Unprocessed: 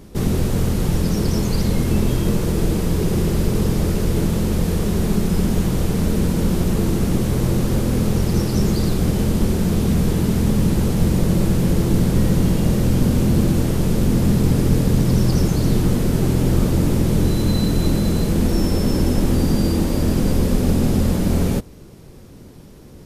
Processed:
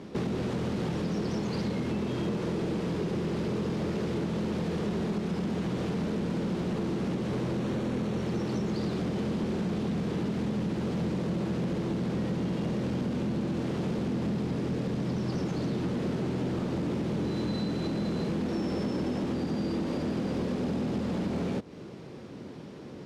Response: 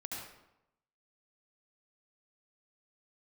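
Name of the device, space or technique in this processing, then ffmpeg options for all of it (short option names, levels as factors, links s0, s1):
AM radio: -filter_complex "[0:a]highpass=170,lowpass=3900,acompressor=threshold=0.0398:ratio=6,asoftclip=type=tanh:threshold=0.0562,asettb=1/sr,asplit=3[s0][s1][s2];[s0]atrim=end=7.604[s3];[s1]atrim=start=7.6:end=8.69,asetpts=PTS-STARTPTS,afade=t=in:d=0.004:c=qsin,afade=t=out:st=1.086:d=0.004:c=qsin,bandreject=f=4900:w=10[s4];[s2]atrim=start=8.686[s5];[s3][s4]acrossfade=d=0.004:c1=hsin:c2=qsin[s6];[s6][s5]acrossfade=d=0.004:c1=qsin:c2=hsin,volume=1.26"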